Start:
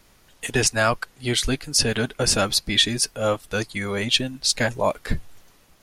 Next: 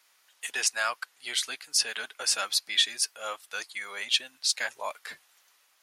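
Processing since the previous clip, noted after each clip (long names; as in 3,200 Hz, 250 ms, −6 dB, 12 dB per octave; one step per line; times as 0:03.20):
high-pass filter 1,100 Hz 12 dB per octave
level −5 dB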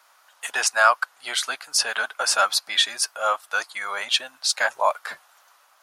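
flat-topped bell 920 Hz +11 dB
level +3.5 dB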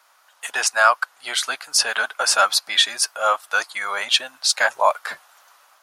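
automatic gain control gain up to 4.5 dB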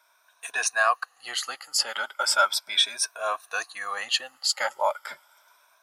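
rippled gain that drifts along the octave scale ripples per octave 1.6, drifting +0.36 Hz, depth 13 dB
level −8.5 dB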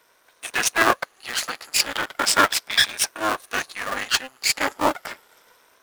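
sub-harmonics by changed cycles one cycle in 2, muted
level +7 dB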